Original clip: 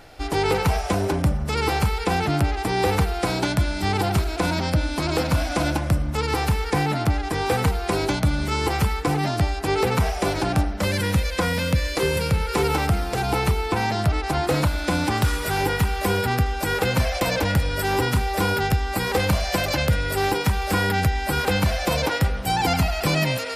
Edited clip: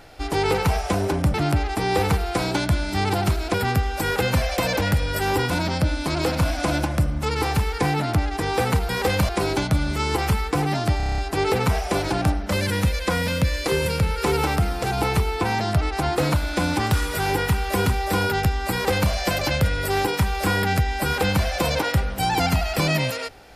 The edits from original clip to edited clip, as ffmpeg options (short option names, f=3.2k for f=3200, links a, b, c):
-filter_complex "[0:a]asplit=14[a][b][c][d][e][f][g][h][i][j][k][l][m][n];[a]atrim=end=1.342[o];[b]atrim=start=2.218:end=4.422[p];[c]atrim=start=16.168:end=18.132[q];[d]atrim=start=4.418:end=7.812[r];[e]atrim=start=18.988:end=19.392[s];[f]atrim=start=7.808:end=9.522[t];[g]atrim=start=9.488:end=9.522[u];[h]atrim=start=9.488:end=9.522[v];[i]atrim=start=9.488:end=9.522[w];[j]atrim=start=9.488:end=9.522[x];[k]atrim=start=9.488:end=9.522[y];[l]atrim=start=9.488:end=9.522[z];[m]atrim=start=9.488:end=16.172[aa];[n]atrim=start=18.128[ab];[o][p]acrossfade=d=0.004:c1=hsin:c2=hsin[ac];[ac][q]acrossfade=d=0.004:c1=hsin:c2=hsin[ad];[ad][r]acrossfade=d=0.004:c1=hsin:c2=hsin[ae];[ae][s]acrossfade=d=0.004:c1=hsin:c2=hsin[af];[af][t]acrossfade=d=0.004:c1=hsin:c2=hsin[ag];[ag][u]acrossfade=d=0.004:c1=hsin:c2=hsin[ah];[ah][v]acrossfade=d=0.004:c1=hsin:c2=hsin[ai];[ai][w]acrossfade=d=0.004:c1=hsin:c2=hsin[aj];[aj][x]acrossfade=d=0.004:c1=hsin:c2=hsin[ak];[ak][y]acrossfade=d=0.004:c1=hsin:c2=hsin[al];[al][z]acrossfade=d=0.004:c1=hsin:c2=hsin[am];[am][aa]acrossfade=d=0.004:c1=hsin:c2=hsin[an];[an][ab]acrossfade=d=0.004:c1=hsin:c2=hsin"